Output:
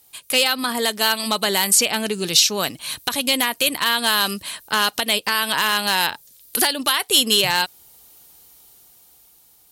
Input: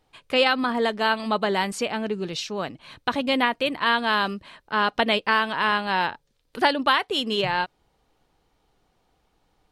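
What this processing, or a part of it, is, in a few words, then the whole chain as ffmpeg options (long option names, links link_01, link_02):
FM broadcast chain: -filter_complex "[0:a]highpass=44,dynaudnorm=framelen=410:gausssize=7:maxgain=11.5dB,acrossover=split=1700|5700[link_01][link_02][link_03];[link_01]acompressor=threshold=-19dB:ratio=4[link_04];[link_02]acompressor=threshold=-24dB:ratio=4[link_05];[link_03]acompressor=threshold=-42dB:ratio=4[link_06];[link_04][link_05][link_06]amix=inputs=3:normalize=0,aemphasis=mode=production:type=75fm,alimiter=limit=-9.5dB:level=0:latency=1:release=337,asoftclip=type=hard:threshold=-13dB,lowpass=frequency=15000:width=0.5412,lowpass=frequency=15000:width=1.3066,aemphasis=mode=production:type=75fm,volume=1dB"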